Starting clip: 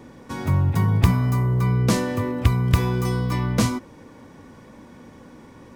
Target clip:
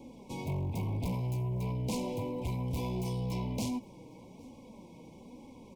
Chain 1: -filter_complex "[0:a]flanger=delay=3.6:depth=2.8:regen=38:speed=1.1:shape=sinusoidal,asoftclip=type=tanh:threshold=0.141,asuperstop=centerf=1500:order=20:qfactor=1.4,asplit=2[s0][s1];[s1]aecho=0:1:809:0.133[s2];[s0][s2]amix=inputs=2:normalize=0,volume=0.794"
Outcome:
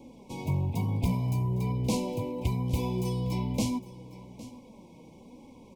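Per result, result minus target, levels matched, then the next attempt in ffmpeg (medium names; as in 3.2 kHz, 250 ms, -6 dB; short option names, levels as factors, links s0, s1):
echo-to-direct +10 dB; saturation: distortion -10 dB
-filter_complex "[0:a]flanger=delay=3.6:depth=2.8:regen=38:speed=1.1:shape=sinusoidal,asoftclip=type=tanh:threshold=0.141,asuperstop=centerf=1500:order=20:qfactor=1.4,asplit=2[s0][s1];[s1]aecho=0:1:809:0.0422[s2];[s0][s2]amix=inputs=2:normalize=0,volume=0.794"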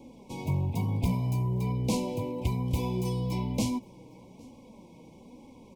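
saturation: distortion -10 dB
-filter_complex "[0:a]flanger=delay=3.6:depth=2.8:regen=38:speed=1.1:shape=sinusoidal,asoftclip=type=tanh:threshold=0.0376,asuperstop=centerf=1500:order=20:qfactor=1.4,asplit=2[s0][s1];[s1]aecho=0:1:809:0.0422[s2];[s0][s2]amix=inputs=2:normalize=0,volume=0.794"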